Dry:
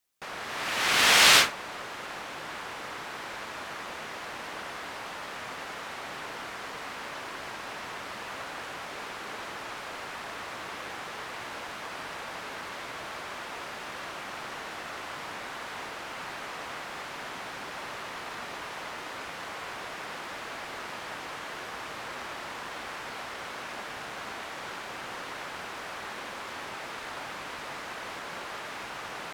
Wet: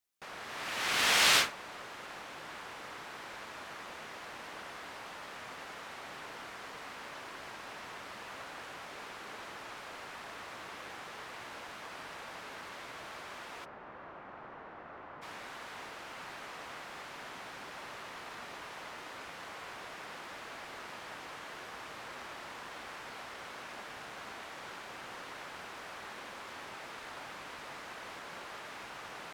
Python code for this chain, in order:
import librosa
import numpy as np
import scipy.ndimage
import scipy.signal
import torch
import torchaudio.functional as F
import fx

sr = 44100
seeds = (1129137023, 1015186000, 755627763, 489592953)

y = fx.lowpass(x, sr, hz=1300.0, slope=12, at=(13.64, 15.21), fade=0.02)
y = y * librosa.db_to_amplitude(-7.0)